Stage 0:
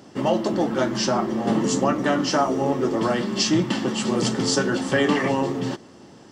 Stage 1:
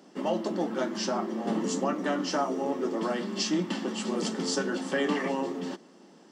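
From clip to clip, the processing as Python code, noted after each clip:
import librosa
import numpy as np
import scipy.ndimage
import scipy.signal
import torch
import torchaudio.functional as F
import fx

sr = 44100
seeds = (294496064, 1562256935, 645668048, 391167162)

y = scipy.signal.sosfilt(scipy.signal.ellip(4, 1.0, 40, 170.0, 'highpass', fs=sr, output='sos'), x)
y = F.gain(torch.from_numpy(y), -7.0).numpy()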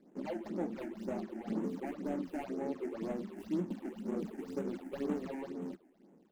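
y = scipy.ndimage.median_filter(x, 41, mode='constant')
y = fx.phaser_stages(y, sr, stages=8, low_hz=140.0, high_hz=4600.0, hz=2.0, feedback_pct=25)
y = F.gain(torch.from_numpy(y), -6.5).numpy()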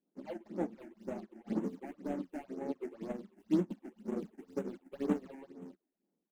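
y = fx.upward_expand(x, sr, threshold_db=-50.0, expansion=2.5)
y = F.gain(torch.from_numpy(y), 6.5).numpy()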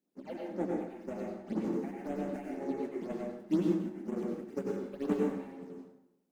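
y = fx.rev_plate(x, sr, seeds[0], rt60_s=0.81, hf_ratio=0.75, predelay_ms=80, drr_db=-2.0)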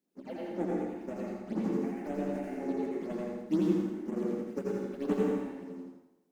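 y = fx.echo_feedback(x, sr, ms=83, feedback_pct=43, wet_db=-3.5)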